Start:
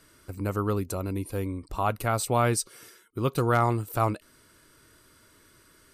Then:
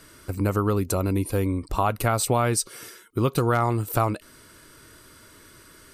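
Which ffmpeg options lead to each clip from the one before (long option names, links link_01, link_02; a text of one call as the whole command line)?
ffmpeg -i in.wav -af "acompressor=threshold=-26dB:ratio=6,volume=8dB" out.wav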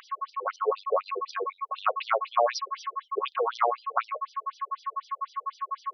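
ffmpeg -i in.wav -af "aeval=exprs='val(0)+0.0316*sin(2*PI*1100*n/s)':channel_layout=same,afftfilt=real='re*between(b*sr/1024,540*pow(4400/540,0.5+0.5*sin(2*PI*4*pts/sr))/1.41,540*pow(4400/540,0.5+0.5*sin(2*PI*4*pts/sr))*1.41)':imag='im*between(b*sr/1024,540*pow(4400/540,0.5+0.5*sin(2*PI*4*pts/sr))/1.41,540*pow(4400/540,0.5+0.5*sin(2*PI*4*pts/sr))*1.41)':win_size=1024:overlap=0.75,volume=5dB" out.wav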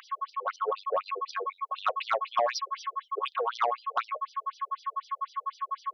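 ffmpeg -i in.wav -af "highpass=530,asoftclip=type=tanh:threshold=-16.5dB" out.wav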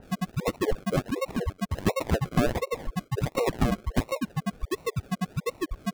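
ffmpeg -i in.wav -filter_complex "[0:a]acrossover=split=580[link_01][link_02];[link_02]acrusher=samples=38:mix=1:aa=0.000001:lfo=1:lforange=22.8:lforate=1.4[link_03];[link_01][link_03]amix=inputs=2:normalize=0,adynamicequalizer=threshold=0.00282:dfrequency=3000:dqfactor=0.7:tfrequency=3000:tqfactor=0.7:attack=5:release=100:ratio=0.375:range=3:mode=cutabove:tftype=highshelf,volume=5dB" out.wav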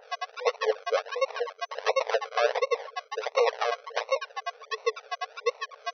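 ffmpeg -i in.wav -af "afftfilt=real='re*between(b*sr/4096,420,6100)':imag='im*between(b*sr/4096,420,6100)':win_size=4096:overlap=0.75,volume=4dB" out.wav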